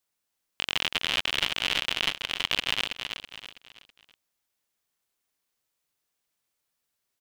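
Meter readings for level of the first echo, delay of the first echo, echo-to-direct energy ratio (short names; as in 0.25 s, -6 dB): -7.0 dB, 0.326 s, -6.5 dB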